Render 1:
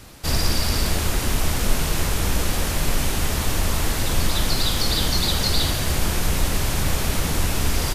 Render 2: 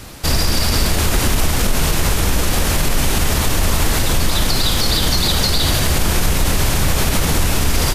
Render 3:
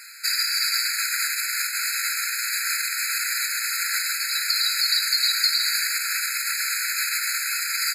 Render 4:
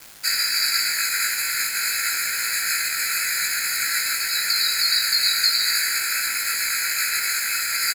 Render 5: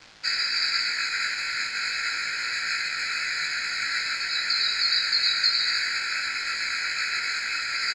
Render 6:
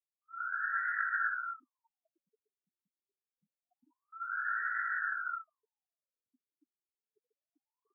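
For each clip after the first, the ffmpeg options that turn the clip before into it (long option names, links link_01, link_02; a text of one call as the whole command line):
ffmpeg -i in.wav -af "alimiter=limit=-14.5dB:level=0:latency=1:release=49,volume=8.5dB" out.wav
ffmpeg -i in.wav -af "afftfilt=real='re*eq(mod(floor(b*sr/1024/1300),2),1)':imag='im*eq(mod(floor(b*sr/1024/1300),2),1)':win_size=1024:overlap=0.75" out.wav
ffmpeg -i in.wav -filter_complex "[0:a]acrusher=bits=5:mix=0:aa=0.000001,asplit=2[link_01][link_02];[link_02]adelay=19,volume=-2.5dB[link_03];[link_01][link_03]amix=inputs=2:normalize=0" out.wav
ffmpeg -i in.wav -af "lowpass=frequency=5400:width=0.5412,lowpass=frequency=5400:width=1.3066,volume=-2dB" out.wav
ffmpeg -i in.wav -af "afftfilt=real='re*gte(hypot(re,im),0.0158)':imag='im*gte(hypot(re,im),0.0158)':win_size=1024:overlap=0.75,highpass=frequency=240:width=0.5412,highpass=frequency=240:width=1.3066,equalizer=frequency=250:width_type=q:width=4:gain=7,equalizer=frequency=390:width_type=q:width=4:gain=-8,equalizer=frequency=570:width_type=q:width=4:gain=-6,equalizer=frequency=910:width_type=q:width=4:gain=9,equalizer=frequency=1400:width_type=q:width=4:gain=5,equalizer=frequency=2300:width_type=q:width=4:gain=-8,lowpass=frequency=2700:width=0.5412,lowpass=frequency=2700:width=1.3066,afftfilt=real='re*lt(b*sr/1024,370*pow(2000/370,0.5+0.5*sin(2*PI*0.26*pts/sr)))':imag='im*lt(b*sr/1024,370*pow(2000/370,0.5+0.5*sin(2*PI*0.26*pts/sr)))':win_size=1024:overlap=0.75,volume=-3.5dB" out.wav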